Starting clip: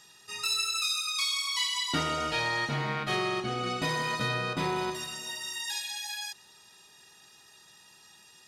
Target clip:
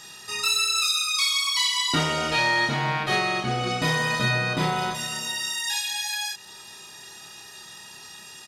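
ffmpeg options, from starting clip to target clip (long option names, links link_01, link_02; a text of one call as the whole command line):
ffmpeg -i in.wav -filter_complex "[0:a]asplit=2[link_01][link_02];[link_02]acompressor=threshold=-46dB:ratio=6,volume=2.5dB[link_03];[link_01][link_03]amix=inputs=2:normalize=0,asplit=2[link_04][link_05];[link_05]adelay=31,volume=-3dB[link_06];[link_04][link_06]amix=inputs=2:normalize=0,volume=3.5dB" out.wav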